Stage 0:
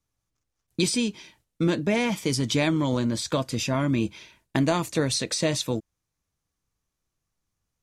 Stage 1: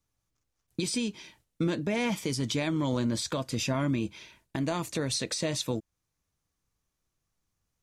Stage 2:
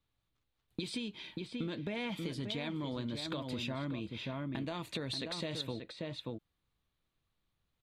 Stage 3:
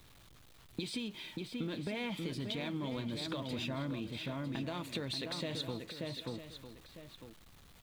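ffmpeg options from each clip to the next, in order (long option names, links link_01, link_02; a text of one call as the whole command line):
ffmpeg -i in.wav -af "alimiter=limit=-20dB:level=0:latency=1:release=329" out.wav
ffmpeg -i in.wav -filter_complex "[0:a]highshelf=frequency=4700:width_type=q:width=3:gain=-7,asplit=2[link_01][link_02];[link_02]adelay=583.1,volume=-7dB,highshelf=frequency=4000:gain=-13.1[link_03];[link_01][link_03]amix=inputs=2:normalize=0,acompressor=threshold=-34dB:ratio=6,volume=-1.5dB" out.wav
ffmpeg -i in.wav -filter_complex "[0:a]aeval=exprs='val(0)+0.5*0.00251*sgn(val(0))':channel_layout=same,asplit=2[link_01][link_02];[link_02]aecho=0:1:953:0.266[link_03];[link_01][link_03]amix=inputs=2:normalize=0,volume=-1dB" out.wav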